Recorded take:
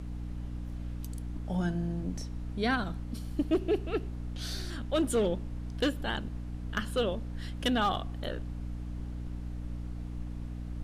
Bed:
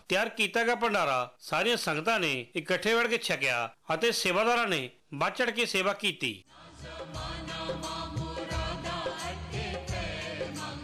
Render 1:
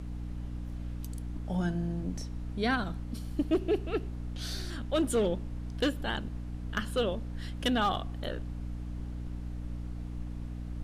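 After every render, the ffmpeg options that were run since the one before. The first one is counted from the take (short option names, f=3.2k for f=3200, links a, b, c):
-af anull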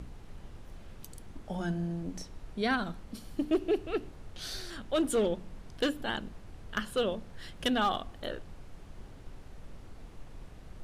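-af "bandreject=f=60:t=h:w=6,bandreject=f=120:t=h:w=6,bandreject=f=180:t=h:w=6,bandreject=f=240:t=h:w=6,bandreject=f=300:t=h:w=6"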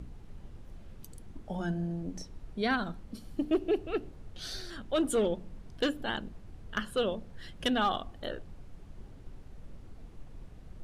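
-af "afftdn=nr=6:nf=-50"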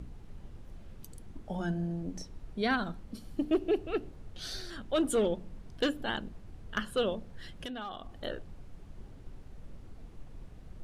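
-filter_complex "[0:a]asettb=1/sr,asplit=3[a][b][c];[a]atrim=end=7.454[d];[b]atrim=start=7.45:end=8.12,asetpts=PTS-STARTPTS,afade=t=in:d=0.004:c=qsin,afade=t=out:st=0.666:d=0.004:c=qsin,acompressor=threshold=-39dB:ratio=4:attack=3.2:release=140:knee=1:detection=peak[e];[c]atrim=start=8.116[f];[d][e]acrossfade=d=0.004:c1=hsin:c2=qsin[g];[g][f]acrossfade=d=0.004:c1=qsin:c2=hsin"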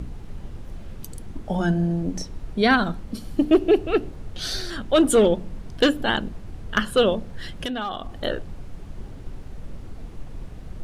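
-af "volume=11.5dB"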